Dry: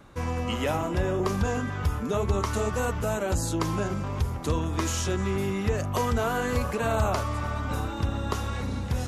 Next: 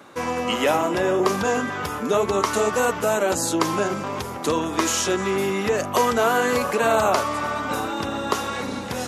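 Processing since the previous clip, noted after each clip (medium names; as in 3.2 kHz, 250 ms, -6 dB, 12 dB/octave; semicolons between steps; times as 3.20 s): high-pass 280 Hz 12 dB/octave; trim +8.5 dB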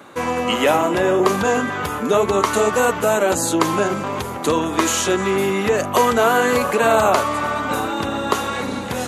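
peaking EQ 5.3 kHz -7 dB 0.3 oct; trim +4 dB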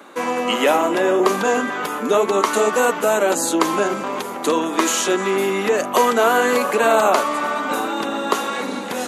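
high-pass 210 Hz 24 dB/octave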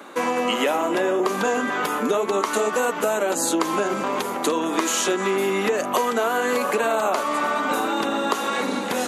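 compression, threshold -20 dBFS, peak gain reduction 9.5 dB; trim +1.5 dB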